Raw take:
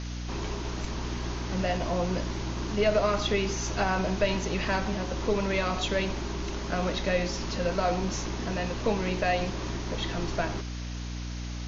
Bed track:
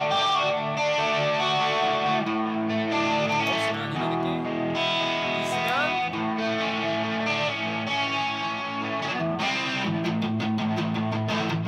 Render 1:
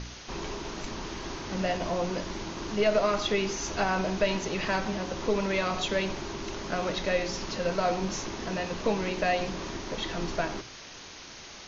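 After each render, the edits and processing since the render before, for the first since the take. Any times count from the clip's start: de-hum 60 Hz, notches 5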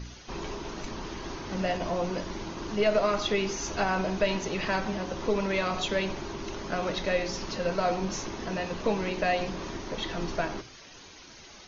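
noise reduction 9 dB, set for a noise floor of -46 dBFS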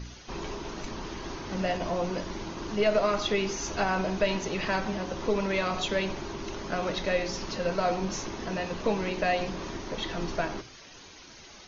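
no audible change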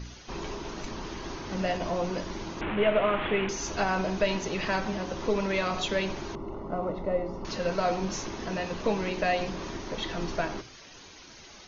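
2.61–3.49 s: one-bit delta coder 16 kbps, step -25 dBFS; 6.35–7.45 s: Savitzky-Golay filter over 65 samples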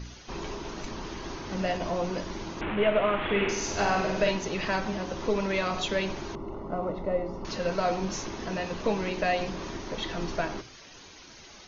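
3.24–4.31 s: flutter echo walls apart 8.5 m, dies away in 0.81 s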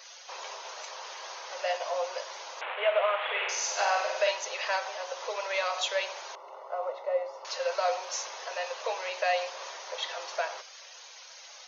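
Chebyshev high-pass 510 Hz, order 5; treble shelf 4.8 kHz +5 dB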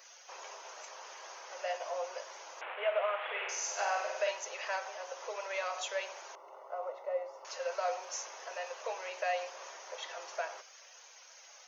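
graphic EQ 500/1000/2000/4000 Hz -5/-5/-3/-12 dB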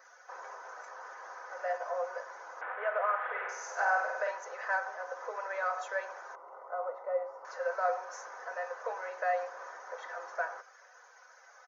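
resonant high shelf 2.1 kHz -10 dB, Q 3; comb 4 ms, depth 39%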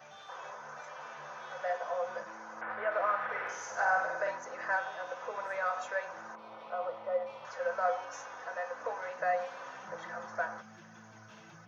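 add bed track -30 dB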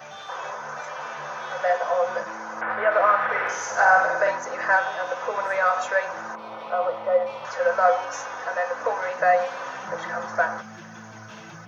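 trim +12 dB

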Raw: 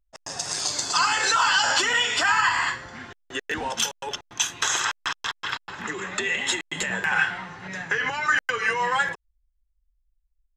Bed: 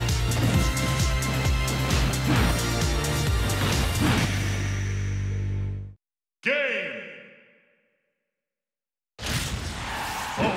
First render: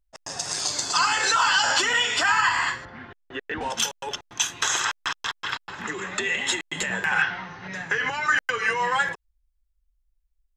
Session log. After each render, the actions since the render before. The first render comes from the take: 2.85–3.61 s: distance through air 310 m; 7.22–7.74 s: steep low-pass 6.5 kHz 96 dB/octave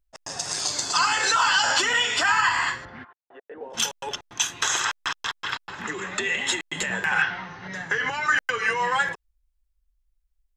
3.03–3.73 s: band-pass filter 1.2 kHz -> 390 Hz, Q 3.2; 7.64–8.09 s: band-stop 2.5 kHz, Q 7.8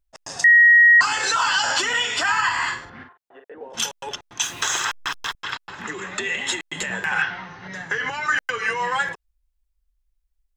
0.44–1.01 s: bleep 1.89 kHz -8.5 dBFS; 2.56–3.55 s: doubling 45 ms -6.5 dB; 4.43–5.35 s: jump at every zero crossing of -36.5 dBFS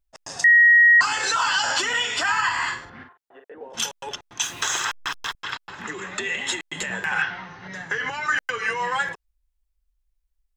trim -1.5 dB

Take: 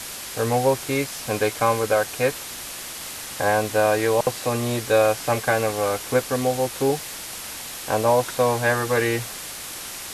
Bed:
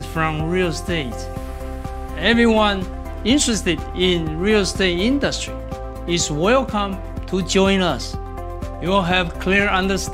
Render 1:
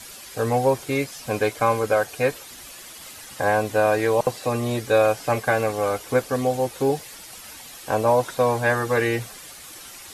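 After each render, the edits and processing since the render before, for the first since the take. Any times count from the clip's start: noise reduction 10 dB, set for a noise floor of -35 dBFS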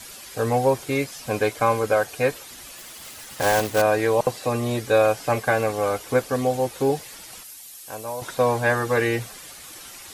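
2.77–3.83 s: block-companded coder 3-bit; 7.43–8.22 s: pre-emphasis filter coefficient 0.8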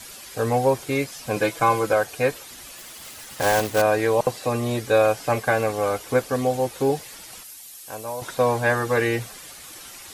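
1.36–1.93 s: comb 6 ms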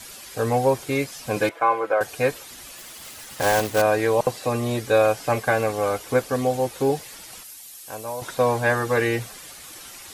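1.49–2.01 s: three-band isolator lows -22 dB, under 350 Hz, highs -20 dB, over 2.5 kHz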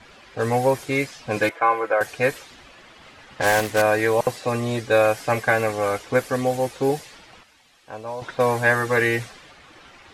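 level-controlled noise filter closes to 2.1 kHz, open at -17.5 dBFS; dynamic bell 1.9 kHz, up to +6 dB, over -40 dBFS, Q 1.9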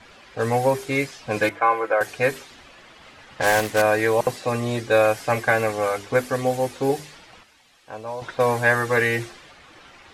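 hum notches 50/100/150/200/250/300/350/400 Hz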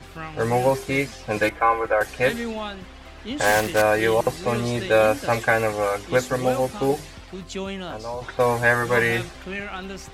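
add bed -15 dB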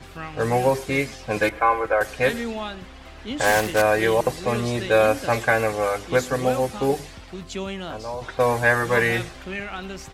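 echo from a far wall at 19 m, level -23 dB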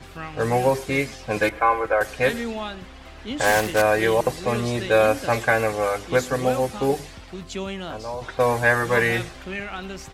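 no audible change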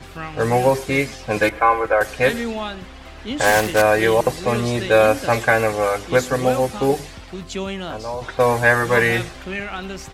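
trim +3.5 dB; peak limiter -2 dBFS, peak gain reduction 1 dB

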